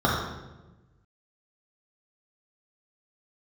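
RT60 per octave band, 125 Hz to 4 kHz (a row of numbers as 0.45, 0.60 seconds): 1.7, 1.5, 1.2, 0.95, 0.90, 0.80 seconds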